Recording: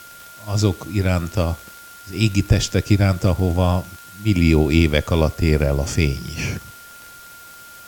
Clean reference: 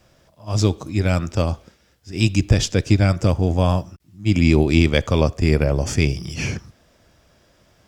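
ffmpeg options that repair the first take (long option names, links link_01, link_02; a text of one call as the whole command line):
ffmpeg -i in.wav -af "adeclick=threshold=4,bandreject=frequency=1400:width=30,afwtdn=0.0063" out.wav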